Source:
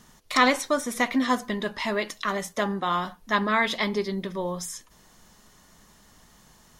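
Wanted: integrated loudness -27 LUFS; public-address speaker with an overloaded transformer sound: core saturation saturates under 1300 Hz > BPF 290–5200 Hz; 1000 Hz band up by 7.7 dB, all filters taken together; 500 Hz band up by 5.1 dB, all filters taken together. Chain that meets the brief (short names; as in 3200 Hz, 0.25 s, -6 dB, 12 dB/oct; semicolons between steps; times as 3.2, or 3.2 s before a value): bell 500 Hz +4.5 dB; bell 1000 Hz +8 dB; core saturation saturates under 1300 Hz; BPF 290–5200 Hz; gain -4 dB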